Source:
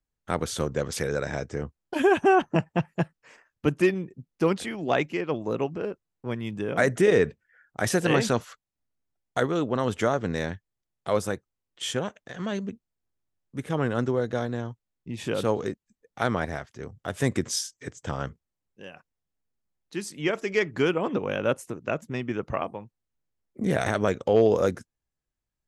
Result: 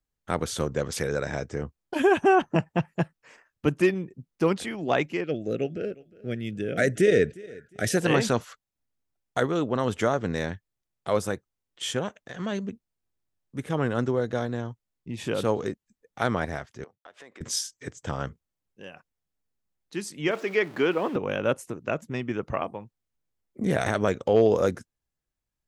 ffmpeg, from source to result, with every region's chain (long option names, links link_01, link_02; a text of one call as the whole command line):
ffmpeg -i in.wav -filter_complex "[0:a]asettb=1/sr,asplit=3[link_01][link_02][link_03];[link_01]atrim=end=5.244[link_04];[link_02]atrim=start=5.24:end=7.97,asetpts=PTS-STARTPTS,afade=type=in:duration=0.004:curve=qsin,afade=type=out:start_time=2.726:duration=0.004:curve=qsin,asuperstop=centerf=980:order=4:qfactor=1.2,aecho=1:1:357|714:0.0794|0.0207,atrim=end_sample=120393[link_05];[link_03]atrim=start=7.966[link_06];[link_04][link_05]acrossfade=duration=0.004:curve1=hsin:curve2=qsin[link_07];[link_07][link_06]acrossfade=duration=0.004:curve1=qsin:curve2=hsin,asettb=1/sr,asplit=3[link_08][link_09][link_10];[link_08]atrim=end=16.844[link_11];[link_09]atrim=start=16.84:end=17.41,asetpts=PTS-STARTPTS,afade=type=in:duration=0.004:curve=qsin,afade=type=out:start_time=0.566:duration=0.004:curve=qsin,agate=range=-33dB:threshold=-42dB:ratio=3:release=100:detection=peak,highpass=510,lowpass=3900,acompressor=threshold=-46dB:ratio=5:attack=3.2:release=140:knee=1:detection=peak[link_12];[link_10]atrim=start=17.406[link_13];[link_11][link_12]acrossfade=duration=0.004:curve1=hsin:curve2=qsin[link_14];[link_14][link_13]acrossfade=duration=0.004:curve1=qsin:curve2=hsin,asettb=1/sr,asplit=3[link_15][link_16][link_17];[link_15]atrim=end=20.314[link_18];[link_16]atrim=start=20.31:end=21.16,asetpts=PTS-STARTPTS,afade=type=in:duration=0.004:curve=qsin,afade=type=out:start_time=0.846:duration=0.004:curve=qsin,aeval=exprs='val(0)+0.5*0.0141*sgn(val(0))':channel_layout=same,highpass=230,acrossover=split=4200[link_19][link_20];[link_20]acompressor=threshold=-56dB:ratio=4:attack=1:release=60[link_21];[link_19][link_21]amix=inputs=2:normalize=0[link_22];[link_17]atrim=start=21.156[link_23];[link_18][link_22]acrossfade=duration=0.004:curve1=hsin:curve2=qsin[link_24];[link_24][link_23]acrossfade=duration=0.004:curve1=qsin:curve2=hsin" out.wav